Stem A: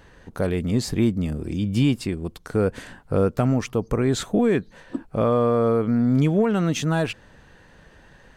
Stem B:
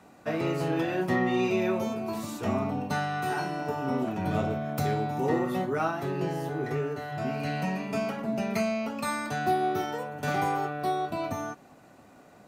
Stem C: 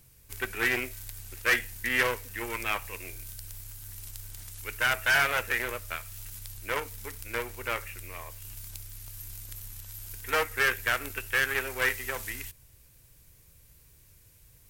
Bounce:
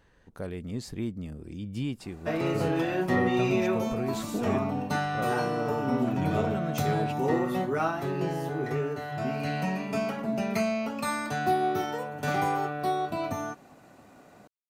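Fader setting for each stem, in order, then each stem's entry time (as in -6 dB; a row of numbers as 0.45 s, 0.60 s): -12.5 dB, +0.5 dB, mute; 0.00 s, 2.00 s, mute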